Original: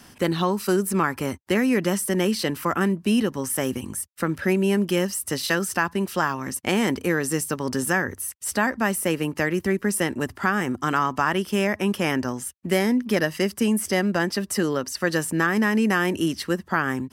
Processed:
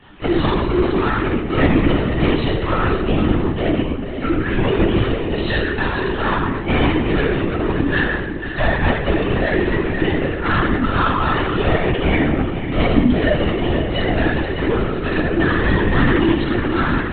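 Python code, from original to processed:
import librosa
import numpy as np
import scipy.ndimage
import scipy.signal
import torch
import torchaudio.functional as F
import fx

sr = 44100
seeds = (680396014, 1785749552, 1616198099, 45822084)

y = fx.low_shelf(x, sr, hz=140.0, db=-9.0)
y = np.clip(y, -10.0 ** (-23.0 / 20.0), 10.0 ** (-23.0 / 20.0))
y = y + 10.0 ** (-9.5 / 20.0) * np.pad(y, (int(485 * sr / 1000.0), 0))[:len(y)]
y = fx.room_shoebox(y, sr, seeds[0], volume_m3=690.0, walls='mixed', distance_m=9.9)
y = fx.lpc_vocoder(y, sr, seeds[1], excitation='whisper', order=16)
y = y * librosa.db_to_amplitude(-7.5)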